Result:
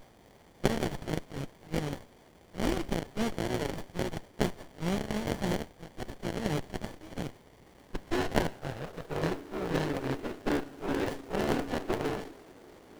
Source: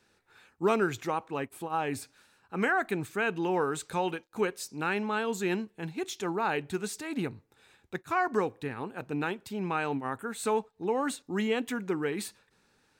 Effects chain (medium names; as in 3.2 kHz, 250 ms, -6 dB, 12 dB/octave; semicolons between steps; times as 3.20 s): cycle switcher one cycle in 3, inverted; level-controlled noise filter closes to 370 Hz, open at -26 dBFS; bass shelf 430 Hz -11.5 dB; ring modulator 870 Hz; added noise pink -55 dBFS; high-pass sweep 3.1 kHz -> 340 Hz, 7.21–9.30 s; on a send at -12 dB: reverberation RT60 0.95 s, pre-delay 4 ms; on the sum: sliding maximum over 33 samples; trim +5.5 dB